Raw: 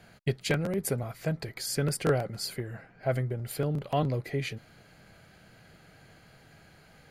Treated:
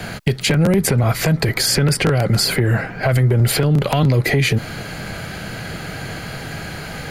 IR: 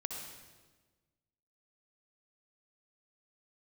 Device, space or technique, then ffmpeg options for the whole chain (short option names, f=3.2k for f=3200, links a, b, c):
mastering chain: -filter_complex "[0:a]equalizer=f=630:t=o:w=0.77:g=-1.5,acrossover=split=200|1500|3400|7300[a][b][c][d][e];[a]acompressor=threshold=-34dB:ratio=4[f];[b]acompressor=threshold=-36dB:ratio=4[g];[c]acompressor=threshold=-45dB:ratio=4[h];[d]acompressor=threshold=-50dB:ratio=4[i];[e]acompressor=threshold=-52dB:ratio=4[j];[f][g][h][i][j]amix=inputs=5:normalize=0,acompressor=threshold=-37dB:ratio=3,asoftclip=type=tanh:threshold=-29.5dB,alimiter=level_in=34dB:limit=-1dB:release=50:level=0:latency=1,volume=-7dB"